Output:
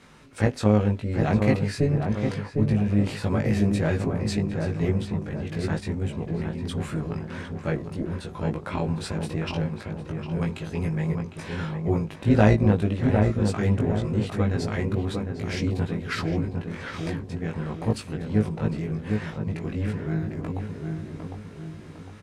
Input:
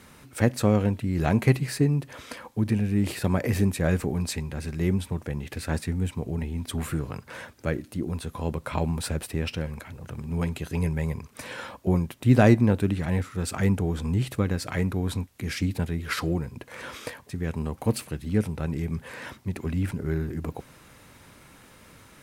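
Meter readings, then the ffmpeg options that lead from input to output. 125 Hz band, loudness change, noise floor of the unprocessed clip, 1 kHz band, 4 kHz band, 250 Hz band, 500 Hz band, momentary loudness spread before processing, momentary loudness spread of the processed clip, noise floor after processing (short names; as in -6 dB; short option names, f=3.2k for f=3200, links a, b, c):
+1.5 dB, +1.0 dB, -53 dBFS, +1.5 dB, -0.5 dB, +1.5 dB, +2.0 dB, 14 LU, 11 LU, -42 dBFS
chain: -filter_complex "[0:a]lowpass=6.5k,tremolo=f=290:d=0.519,asplit=2[a][b];[b]adelay=19,volume=-2.5dB[c];[a][c]amix=inputs=2:normalize=0,asplit=2[d][e];[e]adelay=755,lowpass=f=1.3k:p=1,volume=-4dB,asplit=2[f][g];[g]adelay=755,lowpass=f=1.3k:p=1,volume=0.48,asplit=2[h][i];[i]adelay=755,lowpass=f=1.3k:p=1,volume=0.48,asplit=2[j][k];[k]adelay=755,lowpass=f=1.3k:p=1,volume=0.48,asplit=2[l][m];[m]adelay=755,lowpass=f=1.3k:p=1,volume=0.48,asplit=2[n][o];[o]adelay=755,lowpass=f=1.3k:p=1,volume=0.48[p];[f][h][j][l][n][p]amix=inputs=6:normalize=0[q];[d][q]amix=inputs=2:normalize=0"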